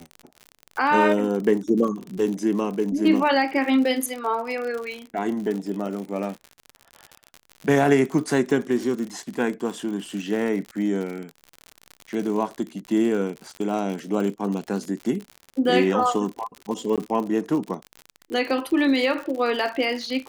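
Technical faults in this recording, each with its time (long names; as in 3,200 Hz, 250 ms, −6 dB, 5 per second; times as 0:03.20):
surface crackle 63 per second −29 dBFS
0:16.96–0:16.98: drop-out 17 ms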